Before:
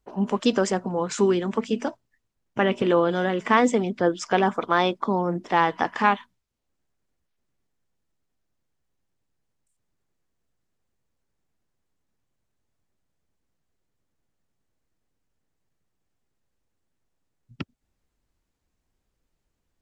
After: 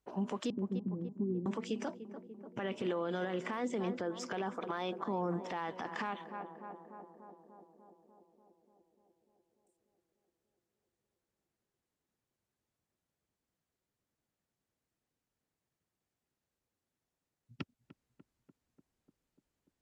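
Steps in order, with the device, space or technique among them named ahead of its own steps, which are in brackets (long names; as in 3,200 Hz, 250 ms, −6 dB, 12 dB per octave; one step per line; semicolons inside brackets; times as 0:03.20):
0:00.50–0:01.46: inverse Chebyshev low-pass filter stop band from 990 Hz, stop band 60 dB
tape delay 295 ms, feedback 84%, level −16.5 dB, low-pass 1,100 Hz
podcast mastering chain (high-pass filter 95 Hz 6 dB per octave; de-essing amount 75%; downward compressor 4 to 1, threshold −23 dBFS, peak gain reduction 8 dB; brickwall limiter −21 dBFS, peak gain reduction 10.5 dB; level −5 dB; MP3 112 kbit/s 32,000 Hz)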